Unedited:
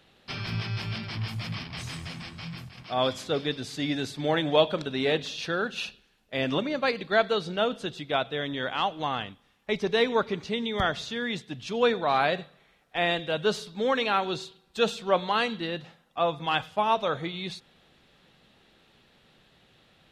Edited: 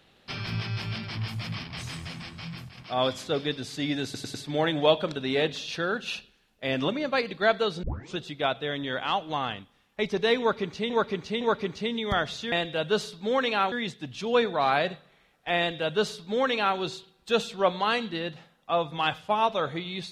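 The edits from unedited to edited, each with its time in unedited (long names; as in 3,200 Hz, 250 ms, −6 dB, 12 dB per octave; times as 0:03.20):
0:04.04: stutter 0.10 s, 4 plays
0:07.53: tape start 0.34 s
0:10.09–0:10.60: repeat, 3 plays
0:13.06–0:14.26: duplicate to 0:11.20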